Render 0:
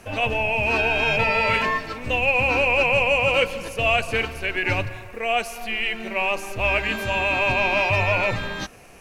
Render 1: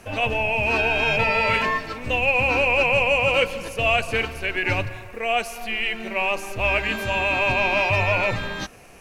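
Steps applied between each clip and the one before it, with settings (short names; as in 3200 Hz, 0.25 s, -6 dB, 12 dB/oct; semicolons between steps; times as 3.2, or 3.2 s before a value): nothing audible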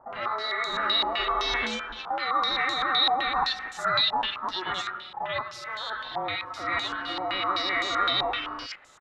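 ring modulator 1300 Hz; bands offset in time lows, highs 90 ms, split 1700 Hz; stepped low-pass 7.8 Hz 840–7000 Hz; gain -6 dB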